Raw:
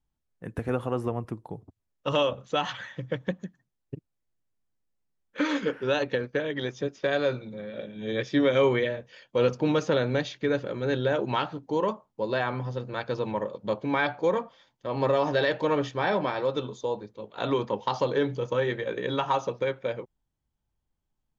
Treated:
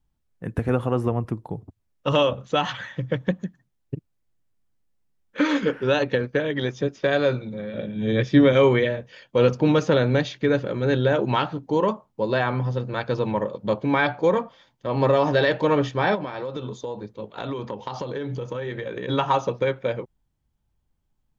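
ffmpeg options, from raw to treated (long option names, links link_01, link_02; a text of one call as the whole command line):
ffmpeg -i in.wav -filter_complex "[0:a]asettb=1/sr,asplit=3[link_01][link_02][link_03];[link_01]atrim=end=7.744[link_04];[link_02]atrim=start=7.74:end=8.53,asetpts=PTS-STARTPTS,afade=type=in:duration=0.004:curve=qsin,afade=type=out:start_time=0.786:duration=0.004:curve=qsin,bass=frequency=250:gain=6,treble=frequency=4000:gain=-2[link_05];[link_03]atrim=start=8.526[link_06];[link_04][link_05]acrossfade=duration=0.004:curve1=hsin:curve2=qsin[link_07];[link_07][link_06]acrossfade=duration=0.004:curve1=qsin:curve2=hsin,asplit=3[link_08][link_09][link_10];[link_08]afade=type=out:start_time=16.14:duration=0.02[link_11];[link_09]acompressor=threshold=-32dB:ratio=6:attack=3.2:release=140:knee=1:detection=peak,afade=type=in:start_time=16.14:duration=0.02,afade=type=out:start_time=19.08:duration=0.02[link_12];[link_10]afade=type=in:start_time=19.08:duration=0.02[link_13];[link_11][link_12][link_13]amix=inputs=3:normalize=0,bass=frequency=250:gain=4,treble=frequency=4000:gain=-2,volume=4.5dB" out.wav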